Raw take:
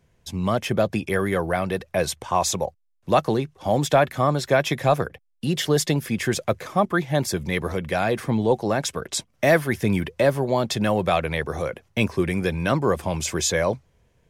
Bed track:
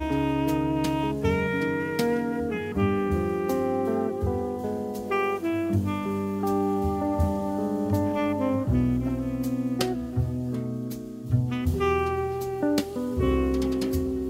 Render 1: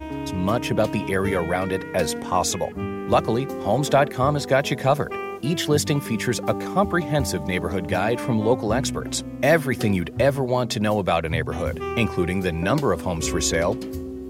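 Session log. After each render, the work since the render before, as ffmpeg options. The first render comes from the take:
-filter_complex "[1:a]volume=-5dB[a];[0:a][a]amix=inputs=2:normalize=0"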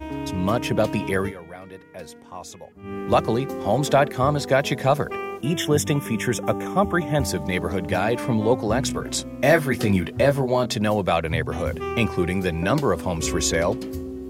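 -filter_complex "[0:a]asettb=1/sr,asplit=3[a][b][c];[a]atrim=end=5.414[d];[b]atrim=start=5.41:end=7.22,asetpts=PTS-STARTPTS,afade=t=in:d=0.004:c=qsin,afade=t=out:st=1.806:d=0.004:c=qsin,asuperstop=centerf=4400:order=8:qfactor=2.8[e];[c]atrim=start=7.216[f];[d][e]acrossfade=d=0.004:c1=hsin:c2=qsin[g];[g][f]acrossfade=d=0.004:c1=qsin:c2=hsin,asettb=1/sr,asplit=3[h][i][j];[h]atrim=end=8.884[k];[i]atrim=start=8.88:end=10.66,asetpts=PTS-STARTPTS,afade=t=in:d=0.004:c=qsin,afade=t=out:st=1.776:d=0.004:c=qsin,asplit=2[l][m];[m]adelay=21,volume=-7dB[n];[l][n]amix=inputs=2:normalize=0,atrim=end_sample=78498[o];[j]atrim=start=10.656[p];[k][o]acrossfade=d=0.004:c1=hsin:c2=qsin[q];[q][p]acrossfade=d=0.004:c1=qsin:c2=hsin,asplit=3[r][s][t];[r]atrim=end=1.33,asetpts=PTS-STARTPTS,afade=t=out:st=1.16:d=0.17:c=qsin:silence=0.158489[u];[s]atrim=start=1.33:end=2.83,asetpts=PTS-STARTPTS,volume=-16dB[v];[t]atrim=start=2.83,asetpts=PTS-STARTPTS,afade=t=in:d=0.17:c=qsin:silence=0.158489[w];[u][v][w]concat=n=3:v=0:a=1"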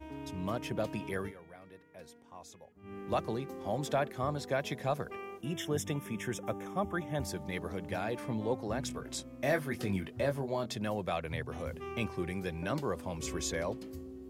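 -af "volume=-13.5dB"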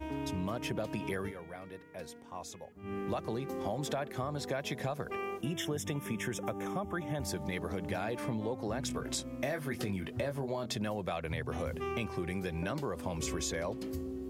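-filter_complex "[0:a]asplit=2[a][b];[b]alimiter=level_in=4dB:limit=-24dB:level=0:latency=1:release=81,volume=-4dB,volume=1.5dB[c];[a][c]amix=inputs=2:normalize=0,acompressor=threshold=-32dB:ratio=6"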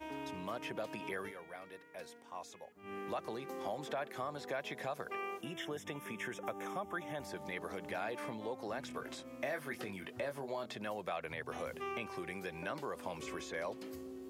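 -filter_complex "[0:a]acrossover=split=2800[a][b];[b]acompressor=threshold=-53dB:ratio=4:attack=1:release=60[c];[a][c]amix=inputs=2:normalize=0,highpass=f=660:p=1"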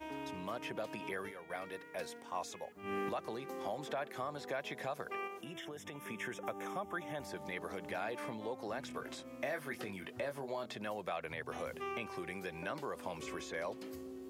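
-filter_complex "[0:a]asettb=1/sr,asplit=3[a][b][c];[a]atrim=end=5.274[d];[b]atrim=start=5.27:end=6.05,asetpts=PTS-STARTPTS,afade=t=in:d=0.004:c=qsin,afade=t=out:st=0.776:d=0.004:c=qsin,acompressor=threshold=-42dB:ratio=6:attack=3.2:release=140:knee=1:detection=peak[e];[c]atrim=start=6.046[f];[d][e]acrossfade=d=0.004:c1=hsin:c2=qsin[g];[g][f]acrossfade=d=0.004:c1=qsin:c2=hsin,asplit=3[h][i][j];[h]atrim=end=1.502[k];[i]atrim=start=1.498:end=3.092,asetpts=PTS-STARTPTS,volume=6.5dB[l];[j]atrim=start=3.088[m];[k][l]acrossfade=d=0.004:c1=hsin:c2=hsin[n];[n][m]acrossfade=d=0.004:c1=hsin:c2=hsin"

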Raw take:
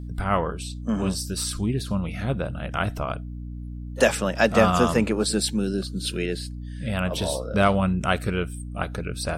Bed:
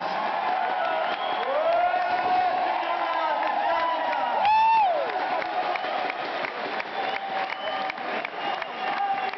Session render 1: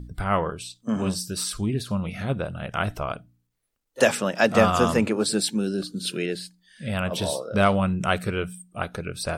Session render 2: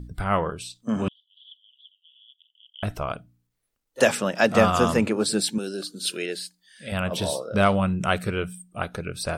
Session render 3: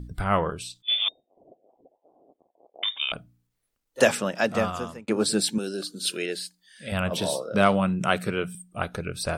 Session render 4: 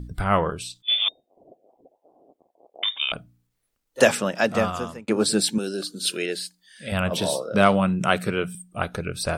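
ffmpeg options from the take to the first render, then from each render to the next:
-af "bandreject=f=60:t=h:w=4,bandreject=f=120:t=h:w=4,bandreject=f=180:t=h:w=4,bandreject=f=240:t=h:w=4,bandreject=f=300:t=h:w=4"
-filter_complex "[0:a]asettb=1/sr,asplit=3[a][b][c];[a]atrim=end=1.084[d];[b]atrim=start=1.08:end=2.83,asetpts=PTS-STARTPTS,afade=t=in:d=0.004:c=qsin,afade=t=out:st=1.746:d=0.004:c=qsin,asuperpass=centerf=3200:order=8:qfactor=6.9[e];[c]atrim=start=2.826[f];[d][e]acrossfade=d=0.004:c1=hsin:c2=qsin[g];[g][f]acrossfade=d=0.004:c1=qsin:c2=hsin,asettb=1/sr,asplit=3[h][i][j];[h]atrim=end=5.584[k];[i]atrim=start=5.58:end=6.92,asetpts=PTS-STARTPTS,afade=t=in:d=0.004:c=qsin,afade=t=out:st=1.336:d=0.004:c=qsin,bass=f=250:g=-14,treble=f=4k:g=4[l];[j]atrim=start=6.916[m];[k][l]acrossfade=d=0.004:c1=hsin:c2=qsin[n];[n][m]acrossfade=d=0.004:c1=qsin:c2=hsin"
-filter_complex "[0:a]asettb=1/sr,asplit=3[a][b][c];[a]atrim=end=0.824[d];[b]atrim=start=0.82:end=3.12,asetpts=PTS-STARTPTS,afade=t=in:d=0.004:c=qsin,afade=t=out:st=2.296:d=0.004:c=qsin,lowpass=f=3.1k:t=q:w=0.5098,lowpass=f=3.1k:t=q:w=0.6013,lowpass=f=3.1k:t=q:w=0.9,lowpass=f=3.1k:t=q:w=2.563,afreqshift=-3700[e];[c]atrim=start=3.116[f];[d][e]acrossfade=d=0.004:c1=hsin:c2=qsin[g];[g][f]acrossfade=d=0.004:c1=qsin:c2=hsin,asettb=1/sr,asplit=3[h][i][j];[h]atrim=end=7.174[k];[i]atrim=start=7.17:end=8.55,asetpts=PTS-STARTPTS,afade=t=in:d=0.004:c=qsin,afade=t=out:st=1.376:d=0.004:c=qsin,highpass=f=120:w=0.5412,highpass=f=120:w=1.3066[l];[j]atrim=start=8.546[m];[k][l]acrossfade=d=0.004:c1=hsin:c2=qsin[n];[n][m]acrossfade=d=0.004:c1=qsin:c2=hsin,asplit=2[o][p];[o]atrim=end=5.08,asetpts=PTS-STARTPTS,afade=t=out:st=4.02:d=1.06[q];[p]atrim=start=5.08,asetpts=PTS-STARTPTS,afade=t=in:d=0.004:c=hsin[r];[q][r]concat=n=2:v=0:a=1"
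-af "volume=2.5dB"

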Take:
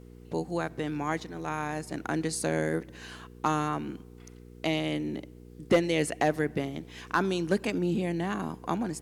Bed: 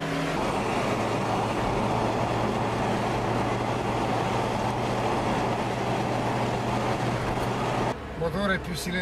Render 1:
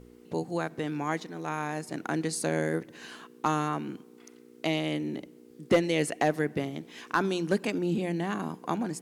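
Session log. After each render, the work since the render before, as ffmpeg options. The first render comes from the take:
-af "bandreject=f=60:t=h:w=4,bandreject=f=120:t=h:w=4,bandreject=f=180:t=h:w=4"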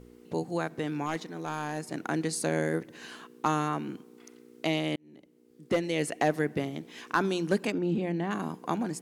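-filter_complex "[0:a]asettb=1/sr,asplit=3[a][b][c];[a]atrim=end=1.064[d];[b]atrim=start=1.06:end=1.81,asetpts=PTS-STARTPTS,afade=t=in:d=0.004:c=qsin,afade=t=out:st=0.746:d=0.004:c=qsin,asoftclip=type=hard:threshold=-24dB[e];[c]atrim=start=1.806[f];[d][e]acrossfade=d=0.004:c1=hsin:c2=qsin[g];[g][f]acrossfade=d=0.004:c1=qsin:c2=hsin,asettb=1/sr,asplit=3[h][i][j];[h]atrim=end=7.724[k];[i]atrim=start=7.72:end=8.31,asetpts=PTS-STARTPTS,afade=t=in:d=0.004:c=qsin,afade=t=out:st=0.586:d=0.004:c=qsin,equalizer=f=10k:t=o:w=1.8:g=-14.5[l];[j]atrim=start=8.306[m];[k][l]acrossfade=d=0.004:c1=hsin:c2=qsin[n];[n][m]acrossfade=d=0.004:c1=qsin:c2=hsin,asplit=2[o][p];[o]atrim=end=4.96,asetpts=PTS-STARTPTS,afade=t=out:st=4.956:d=0.004:c=hsin[q];[p]atrim=start=4.96,asetpts=PTS-STARTPTS,afade=t=in:d=1.34[r];[q][r]concat=n=2:v=0:a=1"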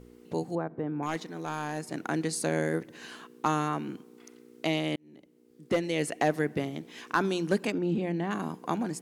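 -filter_complex "[0:a]asettb=1/sr,asplit=3[a][b][c];[a]atrim=end=0.554[d];[b]atrim=start=0.55:end=1.03,asetpts=PTS-STARTPTS,afade=t=in:d=0.004:c=qsin,afade=t=out:st=0.476:d=0.004:c=qsin,lowpass=1k[e];[c]atrim=start=1.026[f];[d][e]acrossfade=d=0.004:c1=hsin:c2=qsin[g];[g][f]acrossfade=d=0.004:c1=qsin:c2=hsin"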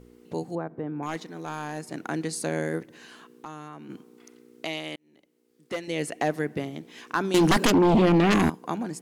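-filter_complex "[0:a]asplit=3[a][b][c];[a]afade=t=out:st=2.85:d=0.02[d];[b]acompressor=threshold=-46dB:ratio=2:attack=3.2:release=140:knee=1:detection=peak,afade=t=in:st=2.85:d=0.02,afade=t=out:st=3.89:d=0.02[e];[c]afade=t=in:st=3.89:d=0.02[f];[d][e][f]amix=inputs=3:normalize=0,asettb=1/sr,asplit=3[g][h][i];[g]atrim=end=4.654[j];[h]atrim=start=4.65:end=5.88,asetpts=PTS-STARTPTS,afade=t=in:d=0.004:c=qsin,afade=t=out:st=1.226:d=0.004:c=qsin,lowshelf=f=460:g=-11.5[k];[i]atrim=start=5.876[l];[j][k]acrossfade=d=0.004:c1=hsin:c2=qsin[m];[m][l]acrossfade=d=0.004:c1=qsin:c2=hsin,asettb=1/sr,asplit=3[n][o][p];[n]atrim=end=7.344[q];[o]atrim=start=7.34:end=8.5,asetpts=PTS-STARTPTS,afade=t=in:d=0.004:c=qsin,afade=t=out:st=1.156:d=0.004:c=qsin,aeval=exprs='0.178*sin(PI/2*3.98*val(0)/0.178)':c=same[r];[p]atrim=start=8.496[s];[q][r]acrossfade=d=0.004:c1=hsin:c2=qsin[t];[t][s]acrossfade=d=0.004:c1=qsin:c2=hsin"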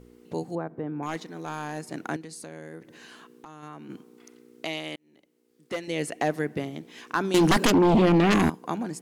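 -filter_complex "[0:a]asettb=1/sr,asplit=3[a][b][c];[a]atrim=end=2.164[d];[b]atrim=start=2.16:end=3.63,asetpts=PTS-STARTPTS,afade=t=in:d=0.004:c=qsin,afade=t=out:st=1.466:d=0.004:c=qsin,acompressor=threshold=-41dB:ratio=3:attack=3.2:release=140:knee=1:detection=peak[e];[c]atrim=start=3.626[f];[d][e]acrossfade=d=0.004:c1=hsin:c2=qsin[g];[g][f]acrossfade=d=0.004:c1=qsin:c2=hsin"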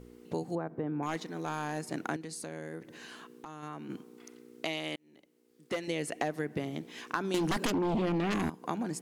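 -af "acompressor=threshold=-29dB:ratio=6"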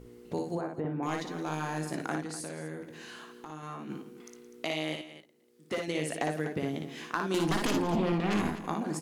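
-filter_complex "[0:a]asplit=2[a][b];[b]adelay=19,volume=-13dB[c];[a][c]amix=inputs=2:normalize=0,aecho=1:1:58|169|249:0.631|0.15|0.211"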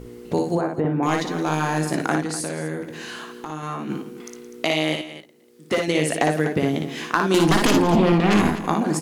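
-af "volume=11.5dB"

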